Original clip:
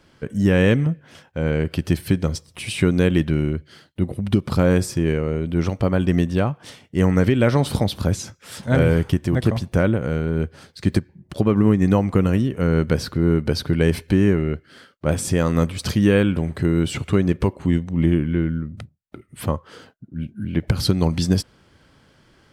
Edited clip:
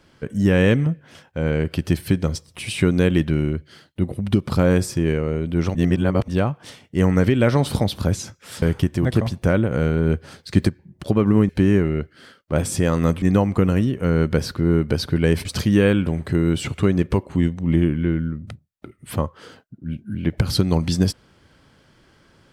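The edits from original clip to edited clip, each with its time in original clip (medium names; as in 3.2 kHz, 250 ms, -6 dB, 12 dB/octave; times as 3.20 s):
5.75–6.28 s: reverse
8.62–8.92 s: delete
10.01–10.95 s: gain +3 dB
14.02–15.75 s: move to 11.79 s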